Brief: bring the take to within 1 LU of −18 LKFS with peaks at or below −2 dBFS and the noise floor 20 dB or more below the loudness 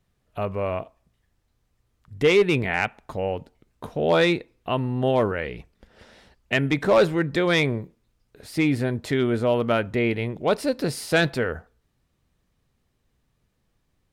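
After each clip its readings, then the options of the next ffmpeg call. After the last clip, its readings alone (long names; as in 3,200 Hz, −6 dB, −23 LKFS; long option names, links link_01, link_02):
integrated loudness −23.5 LKFS; sample peak −10.0 dBFS; target loudness −18.0 LKFS
→ -af "volume=5.5dB"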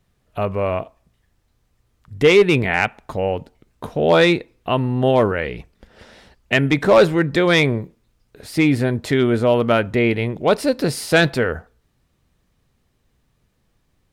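integrated loudness −18.0 LKFS; sample peak −4.5 dBFS; background noise floor −66 dBFS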